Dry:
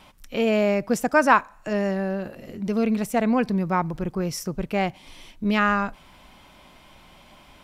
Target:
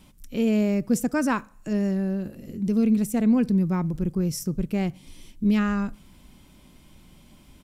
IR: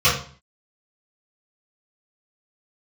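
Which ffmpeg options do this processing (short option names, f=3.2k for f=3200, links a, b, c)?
-filter_complex "[0:a]firequalizer=gain_entry='entry(240,0);entry(670,-15);entry(7800,-1)':delay=0.05:min_phase=1,asplit=2[a][b];[1:a]atrim=start_sample=2205[c];[b][c]afir=irnorm=-1:irlink=0,volume=-43dB[d];[a][d]amix=inputs=2:normalize=0,volume=3dB"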